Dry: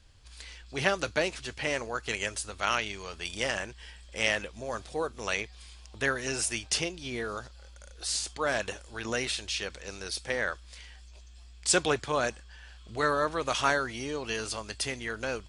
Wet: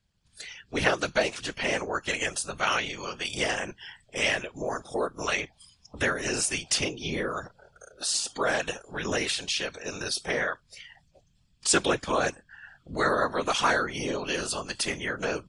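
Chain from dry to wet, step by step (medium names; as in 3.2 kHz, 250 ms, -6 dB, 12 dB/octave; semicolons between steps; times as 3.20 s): spectral noise reduction 22 dB; in parallel at +2 dB: compression, threshold -37 dBFS, peak gain reduction 16 dB; on the sum: whisper effect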